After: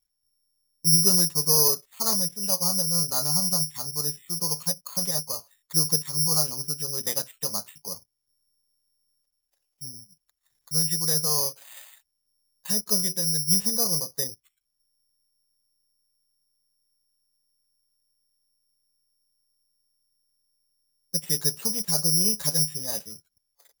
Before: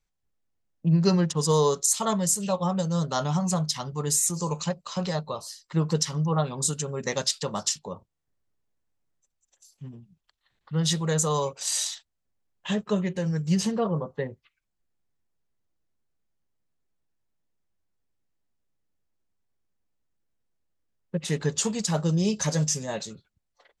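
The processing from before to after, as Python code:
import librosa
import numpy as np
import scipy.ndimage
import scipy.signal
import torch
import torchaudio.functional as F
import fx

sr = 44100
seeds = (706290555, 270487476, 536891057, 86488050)

y = (np.kron(scipy.signal.resample_poly(x, 1, 8), np.eye(8)[0]) * 8)[:len(x)]
y = y * 10.0 ** (-7.5 / 20.0)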